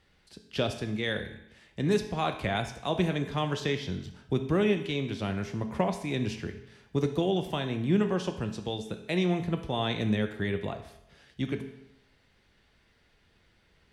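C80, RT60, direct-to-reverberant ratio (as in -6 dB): 12.0 dB, 0.85 s, 6.0 dB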